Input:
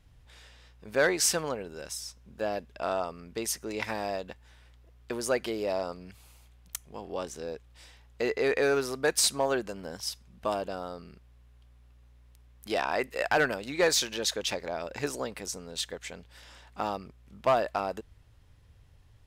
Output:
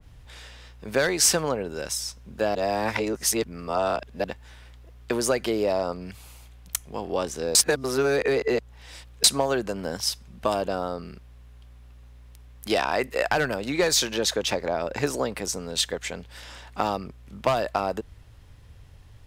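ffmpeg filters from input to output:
-filter_complex "[0:a]asplit=5[s0][s1][s2][s3][s4];[s0]atrim=end=2.552[s5];[s1]atrim=start=2.548:end=4.242,asetpts=PTS-STARTPTS,areverse[s6];[s2]atrim=start=4.238:end=7.552[s7];[s3]atrim=start=7.548:end=9.242,asetpts=PTS-STARTPTS,areverse[s8];[s4]atrim=start=9.238[s9];[s5][s6]acrossfade=d=0.004:c1=hsin:c2=hsin[s10];[s10][s7]acrossfade=d=0.004:c1=hsin:c2=hsin[s11];[s11][s8]acrossfade=d=0.004:c1=hsin:c2=hsin[s12];[s12][s9]acrossfade=d=0.004:c1=hsin:c2=hsin,acrossover=split=160|3000[s13][s14][s15];[s14]acompressor=threshold=0.0355:ratio=6[s16];[s13][s16][s15]amix=inputs=3:normalize=0,adynamicequalizer=threshold=0.00562:dfrequency=1700:dqfactor=0.7:tfrequency=1700:tqfactor=0.7:attack=5:release=100:ratio=0.375:range=3:mode=cutabove:tftype=highshelf,volume=2.82"

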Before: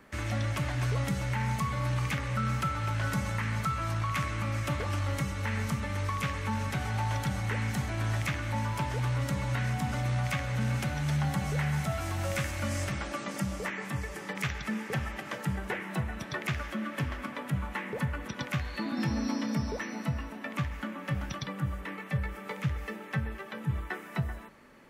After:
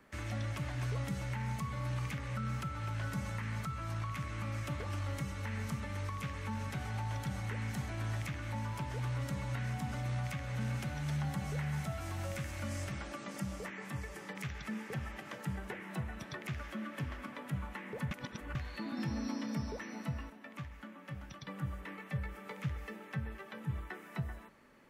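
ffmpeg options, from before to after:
-filter_complex "[0:a]asplit=5[s0][s1][s2][s3][s4];[s0]atrim=end=18.112[s5];[s1]atrim=start=18.108:end=18.552,asetpts=PTS-STARTPTS,areverse[s6];[s2]atrim=start=18.548:end=20.302[s7];[s3]atrim=start=20.298:end=21.472,asetpts=PTS-STARTPTS,volume=0.501[s8];[s4]atrim=start=21.468[s9];[s5][s6]acrossfade=d=0.004:c1=hsin:c2=hsin[s10];[s10][s7]acrossfade=d=0.004:c1=hsin:c2=hsin[s11];[s11][s8]acrossfade=d=0.004:c1=hsin:c2=hsin[s12];[s12][s9]acrossfade=d=0.004:c1=hsin:c2=hsin,acrossover=split=400[s13][s14];[s14]acompressor=threshold=0.0178:ratio=6[s15];[s13][s15]amix=inputs=2:normalize=0,volume=0.473"

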